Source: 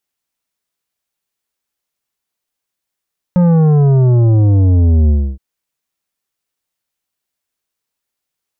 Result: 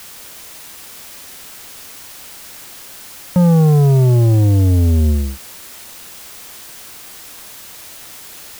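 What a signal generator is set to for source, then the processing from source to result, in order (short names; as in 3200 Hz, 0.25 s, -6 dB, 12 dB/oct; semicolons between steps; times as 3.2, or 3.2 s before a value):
sub drop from 180 Hz, over 2.02 s, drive 10 dB, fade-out 0.29 s, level -8 dB
HPF 80 Hz 6 dB/oct; requantised 6-bit, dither triangular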